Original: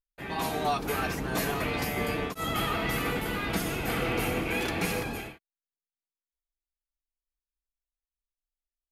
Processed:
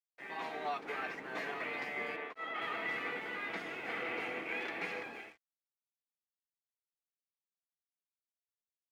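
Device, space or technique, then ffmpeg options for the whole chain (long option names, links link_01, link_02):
pocket radio on a weak battery: -filter_complex "[0:a]highpass=360,lowpass=3200,aeval=exprs='sgn(val(0))*max(abs(val(0))-0.00168,0)':channel_layout=same,equalizer=frequency=2000:width_type=o:width=0.47:gain=8,asettb=1/sr,asplit=3[link_01][link_02][link_03];[link_01]atrim=end=2.164[link_04];[link_02]atrim=start=2.16:end=2.62,asetpts=PTS-STARTPTS,afade=type=in:duration=0.004:curve=qsin,afade=type=out:start_time=0.456:duration=0.004:curve=qsin,bass=frequency=250:gain=-10,treble=frequency=4000:gain=-10[link_05];[link_03]atrim=start=2.616[link_06];[link_04][link_05]acrossfade=duration=0.004:curve1=hsin:curve2=qsin[link_07];[link_07][link_06]acrossfade=duration=0.004:curve1=qsin:curve2=hsin,volume=-9dB"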